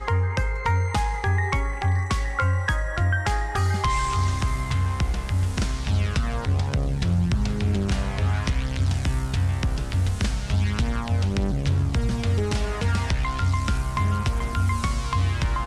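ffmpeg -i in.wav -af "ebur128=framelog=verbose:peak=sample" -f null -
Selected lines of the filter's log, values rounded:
Integrated loudness:
  I:         -24.7 LUFS
  Threshold: -34.7 LUFS
Loudness range:
  LRA:         0.8 LU
  Threshold: -44.7 LUFS
  LRA low:   -25.1 LUFS
  LRA high:  -24.2 LUFS
Sample peak:
  Peak:      -13.2 dBFS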